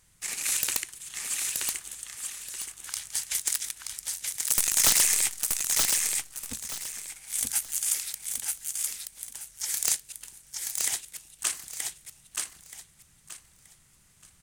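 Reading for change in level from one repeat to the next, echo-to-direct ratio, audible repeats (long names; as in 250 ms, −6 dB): −11.5 dB, −3.0 dB, 3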